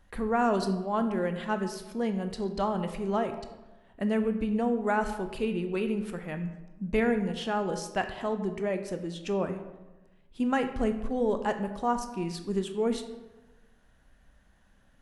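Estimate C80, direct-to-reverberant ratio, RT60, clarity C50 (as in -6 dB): 11.5 dB, 7.5 dB, 1.1 s, 9.5 dB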